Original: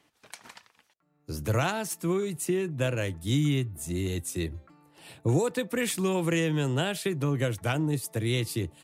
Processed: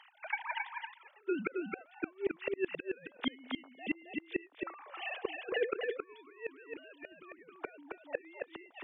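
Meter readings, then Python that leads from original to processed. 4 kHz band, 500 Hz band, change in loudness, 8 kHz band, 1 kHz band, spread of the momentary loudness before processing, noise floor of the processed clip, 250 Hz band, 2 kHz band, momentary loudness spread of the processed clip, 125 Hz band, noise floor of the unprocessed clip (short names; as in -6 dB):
-10.5 dB, -8.0 dB, -11.0 dB, under -40 dB, -7.0 dB, 9 LU, -63 dBFS, -12.0 dB, -4.5 dB, 13 LU, -33.0 dB, -70 dBFS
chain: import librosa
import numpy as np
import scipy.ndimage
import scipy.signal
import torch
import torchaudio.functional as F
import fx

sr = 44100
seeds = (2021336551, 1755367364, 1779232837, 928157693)

p1 = fx.sine_speech(x, sr)
p2 = scipy.signal.sosfilt(scipy.signal.butter(2, 550.0, 'highpass', fs=sr, output='sos'), p1)
p3 = fx.over_compress(p2, sr, threshold_db=-35.0, ratio=-0.5)
p4 = fx.gate_flip(p3, sr, shuts_db=-33.0, range_db=-33)
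p5 = p4 + fx.echo_single(p4, sr, ms=269, db=-4.0, dry=0)
y = F.gain(torch.from_numpy(p5), 13.0).numpy()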